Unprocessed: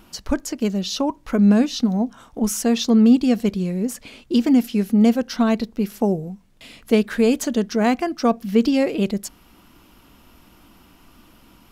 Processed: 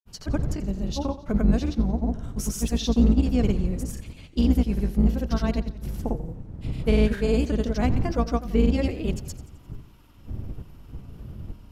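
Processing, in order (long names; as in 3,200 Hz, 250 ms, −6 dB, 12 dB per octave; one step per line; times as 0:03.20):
sub-octave generator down 2 octaves, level +2 dB
wind on the microphone 110 Hz −27 dBFS
granular cloud, pitch spread up and down by 0 semitones
feedback echo with a swinging delay time 87 ms, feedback 52%, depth 90 cents, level −16 dB
level −6.5 dB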